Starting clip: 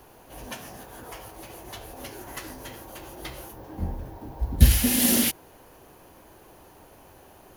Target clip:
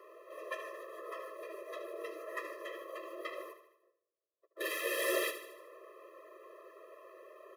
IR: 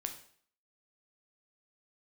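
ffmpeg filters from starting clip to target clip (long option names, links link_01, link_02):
-filter_complex "[0:a]acontrast=58,acrossover=split=420 2300:gain=0.141 1 0.1[link_01][link_02][link_03];[link_01][link_02][link_03]amix=inputs=3:normalize=0,asettb=1/sr,asplit=3[link_04][link_05][link_06];[link_04]atrim=end=1.394[link_07];[link_05]atrim=start=1.39:end=2.43,asetpts=PTS-STARTPTS,afade=type=in:duration=0.004:curve=qsin,afade=type=out:start_time=1.036:duration=0.004:curve=qsin,afreqshift=-94[link_08];[link_06]atrim=start=2.426[link_09];[link_07][link_08]acrossfade=duration=0.004:curve1=hsin:curve2=qsin[link_10];[link_10][link_09]acrossfade=duration=0.004:curve1=qsin:curve2=hsin,asettb=1/sr,asplit=3[link_11][link_12][link_13];[link_11]atrim=end=3.534[link_14];[link_12]atrim=start=3.53:end=4.57,asetpts=PTS-STARTPTS,afade=type=in:duration=0.004:curve=qsin,afade=type=out:start_time=1.036:duration=0.004:curve=qsin,agate=range=-50dB:threshold=-30dB:ratio=16:detection=peak[link_15];[link_13]atrim=start=4.566[link_16];[link_14][link_15]acrossfade=duration=0.004:curve1=hsin:curve2=qsin[link_17];[link_17][link_16]acrossfade=duration=0.004:curve1=qsin:curve2=hsin,asplit=2[link_18][link_19];[link_19]aecho=0:1:76|152|228|304|380|456:0.282|0.149|0.0792|0.042|0.0222|0.0118[link_20];[link_18][link_20]amix=inputs=2:normalize=0,afftfilt=real='re*eq(mod(floor(b*sr/1024/340),2),1)':imag='im*eq(mod(floor(b*sr/1024/340),2),1)':win_size=1024:overlap=0.75,volume=-2dB"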